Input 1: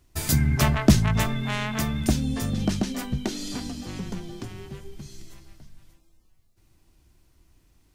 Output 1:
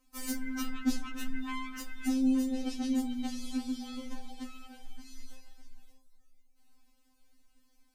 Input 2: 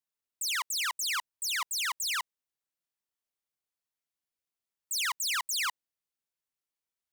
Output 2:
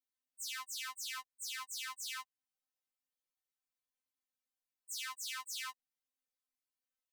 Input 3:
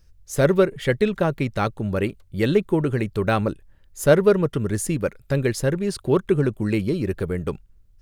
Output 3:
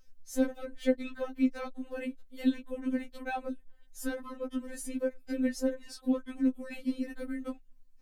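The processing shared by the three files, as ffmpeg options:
-filter_complex "[0:a]acrossover=split=430[s0][s1];[s1]acompressor=threshold=0.01:ratio=2[s2];[s0][s2]amix=inputs=2:normalize=0,afftfilt=real='re*3.46*eq(mod(b,12),0)':imag='im*3.46*eq(mod(b,12),0)':win_size=2048:overlap=0.75,volume=0.708"

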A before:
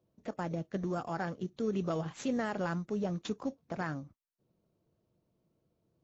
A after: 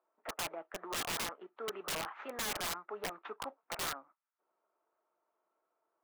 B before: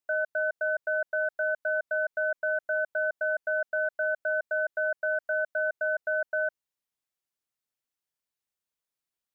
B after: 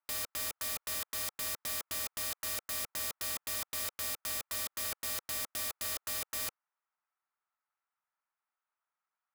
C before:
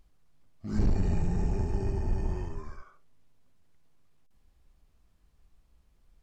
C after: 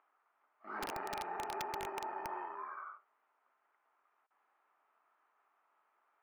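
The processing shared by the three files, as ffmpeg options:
-af "highpass=f=490:w=0.5412,highpass=f=490:w=1.3066,equalizer=f=510:t=q:w=4:g=-9,equalizer=f=900:t=q:w=4:g=6,equalizer=f=1300:t=q:w=4:g=10,lowpass=f=2200:w=0.5412,lowpass=f=2200:w=1.3066,aeval=exprs='(mod(47.3*val(0)+1,2)-1)/47.3':c=same,volume=1.33"

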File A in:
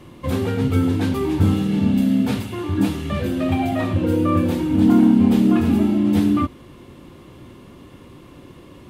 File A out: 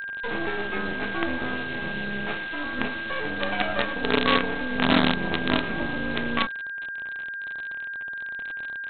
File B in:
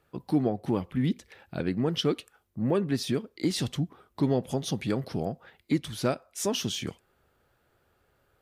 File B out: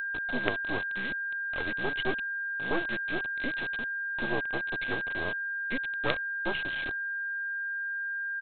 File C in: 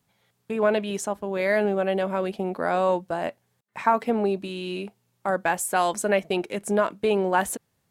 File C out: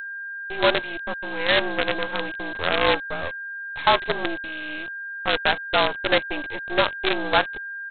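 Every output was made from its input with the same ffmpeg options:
-af "highpass=f=360:t=q:w=0.5412,highpass=f=360:t=q:w=1.307,lowpass=f=2700:t=q:w=0.5176,lowpass=f=2700:t=q:w=0.7071,lowpass=f=2700:t=q:w=1.932,afreqshift=-58,aresample=8000,acrusher=bits=4:dc=4:mix=0:aa=0.000001,aresample=44100,aeval=exprs='val(0)+0.02*sin(2*PI*1600*n/s)':c=same,crystalizer=i=3:c=0,volume=1.12"

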